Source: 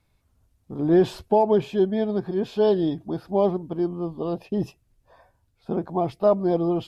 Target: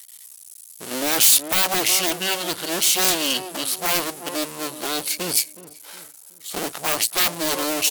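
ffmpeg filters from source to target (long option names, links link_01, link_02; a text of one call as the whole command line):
ffmpeg -i in.wav -filter_complex "[0:a]aeval=exprs='max(val(0),0)':channel_layout=same,aderivative,asplit=2[link_01][link_02];[link_02]adelay=320,lowpass=frequency=930:poles=1,volume=-15dB,asplit=2[link_03][link_04];[link_04]adelay=320,lowpass=frequency=930:poles=1,volume=0.43,asplit=2[link_05][link_06];[link_06]adelay=320,lowpass=frequency=930:poles=1,volume=0.43,asplit=2[link_07][link_08];[link_08]adelay=320,lowpass=frequency=930:poles=1,volume=0.43[link_09];[link_01][link_03][link_05][link_07][link_09]amix=inputs=5:normalize=0,asetrate=38367,aresample=44100,aeval=exprs='0.0473*sin(PI/2*6.31*val(0)/0.0473)':channel_layout=same,crystalizer=i=3.5:c=0,volume=7dB" out.wav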